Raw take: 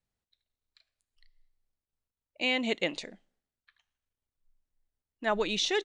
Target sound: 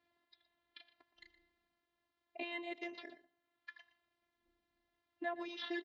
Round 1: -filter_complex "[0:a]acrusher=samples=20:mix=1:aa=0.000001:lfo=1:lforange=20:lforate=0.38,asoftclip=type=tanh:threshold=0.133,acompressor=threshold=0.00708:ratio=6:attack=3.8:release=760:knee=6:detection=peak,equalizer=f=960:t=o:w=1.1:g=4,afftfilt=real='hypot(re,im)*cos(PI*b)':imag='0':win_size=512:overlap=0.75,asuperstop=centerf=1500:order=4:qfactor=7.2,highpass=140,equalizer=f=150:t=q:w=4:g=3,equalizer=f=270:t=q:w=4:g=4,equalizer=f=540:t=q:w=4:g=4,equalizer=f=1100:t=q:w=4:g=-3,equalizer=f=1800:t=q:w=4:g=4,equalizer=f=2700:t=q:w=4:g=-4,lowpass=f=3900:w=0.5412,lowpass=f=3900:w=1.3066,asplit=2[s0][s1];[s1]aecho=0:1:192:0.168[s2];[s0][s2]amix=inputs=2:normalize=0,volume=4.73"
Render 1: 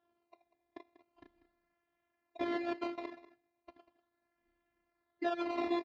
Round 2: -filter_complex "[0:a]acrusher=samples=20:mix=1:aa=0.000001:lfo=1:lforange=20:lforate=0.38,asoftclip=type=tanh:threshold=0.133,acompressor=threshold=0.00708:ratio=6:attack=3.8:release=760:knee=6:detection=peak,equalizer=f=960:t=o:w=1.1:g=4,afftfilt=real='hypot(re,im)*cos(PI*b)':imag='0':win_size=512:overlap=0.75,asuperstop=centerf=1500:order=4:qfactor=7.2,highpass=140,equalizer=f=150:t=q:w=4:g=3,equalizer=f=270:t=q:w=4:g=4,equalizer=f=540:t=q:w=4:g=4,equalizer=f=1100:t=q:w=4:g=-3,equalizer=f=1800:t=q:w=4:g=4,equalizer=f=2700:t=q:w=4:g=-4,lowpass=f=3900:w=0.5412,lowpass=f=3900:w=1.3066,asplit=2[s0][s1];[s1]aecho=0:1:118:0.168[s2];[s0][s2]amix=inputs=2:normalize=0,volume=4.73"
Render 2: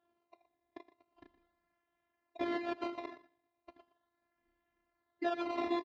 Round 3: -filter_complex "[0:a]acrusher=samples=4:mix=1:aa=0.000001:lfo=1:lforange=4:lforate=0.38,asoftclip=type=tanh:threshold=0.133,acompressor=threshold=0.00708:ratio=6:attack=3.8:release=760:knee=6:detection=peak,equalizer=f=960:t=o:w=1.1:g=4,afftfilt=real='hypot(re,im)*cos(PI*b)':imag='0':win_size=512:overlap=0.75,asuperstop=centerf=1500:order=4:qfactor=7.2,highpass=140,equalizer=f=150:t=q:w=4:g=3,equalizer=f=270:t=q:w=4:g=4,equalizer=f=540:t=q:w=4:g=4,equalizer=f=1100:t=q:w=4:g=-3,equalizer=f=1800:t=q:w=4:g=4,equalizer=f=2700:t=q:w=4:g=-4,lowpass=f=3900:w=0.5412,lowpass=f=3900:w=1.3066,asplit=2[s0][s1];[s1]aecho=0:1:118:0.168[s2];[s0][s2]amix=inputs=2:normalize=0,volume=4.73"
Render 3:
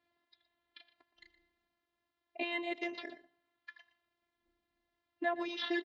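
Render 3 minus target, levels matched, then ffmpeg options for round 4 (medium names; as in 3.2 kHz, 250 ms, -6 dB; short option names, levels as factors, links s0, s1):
compression: peak gain reduction -6 dB
-filter_complex "[0:a]acrusher=samples=4:mix=1:aa=0.000001:lfo=1:lforange=4:lforate=0.38,asoftclip=type=tanh:threshold=0.133,acompressor=threshold=0.00299:ratio=6:attack=3.8:release=760:knee=6:detection=peak,equalizer=f=960:t=o:w=1.1:g=4,afftfilt=real='hypot(re,im)*cos(PI*b)':imag='0':win_size=512:overlap=0.75,asuperstop=centerf=1500:order=4:qfactor=7.2,highpass=140,equalizer=f=150:t=q:w=4:g=3,equalizer=f=270:t=q:w=4:g=4,equalizer=f=540:t=q:w=4:g=4,equalizer=f=1100:t=q:w=4:g=-3,equalizer=f=1800:t=q:w=4:g=4,equalizer=f=2700:t=q:w=4:g=-4,lowpass=f=3900:w=0.5412,lowpass=f=3900:w=1.3066,asplit=2[s0][s1];[s1]aecho=0:1:118:0.168[s2];[s0][s2]amix=inputs=2:normalize=0,volume=4.73"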